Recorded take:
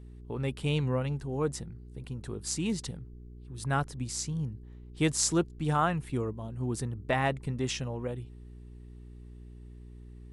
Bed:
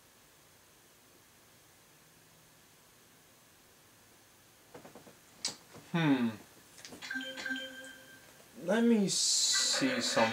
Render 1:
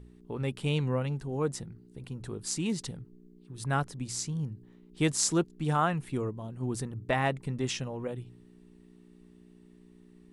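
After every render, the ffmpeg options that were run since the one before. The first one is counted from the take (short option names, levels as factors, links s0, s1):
-af "bandreject=f=60:t=h:w=4,bandreject=f=120:t=h:w=4"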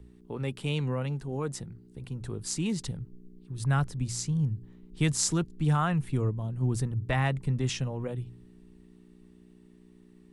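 -filter_complex "[0:a]acrossover=split=130|1000|1800[s0][s1][s2][s3];[s0]dynaudnorm=f=390:g=13:m=3.98[s4];[s1]alimiter=level_in=1.12:limit=0.0631:level=0:latency=1,volume=0.891[s5];[s4][s5][s2][s3]amix=inputs=4:normalize=0"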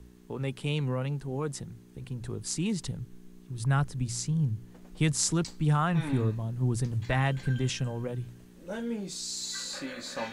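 -filter_complex "[1:a]volume=0.447[s0];[0:a][s0]amix=inputs=2:normalize=0"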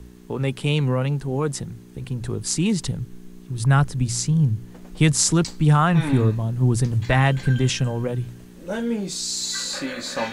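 -af "volume=2.82,alimiter=limit=0.891:level=0:latency=1"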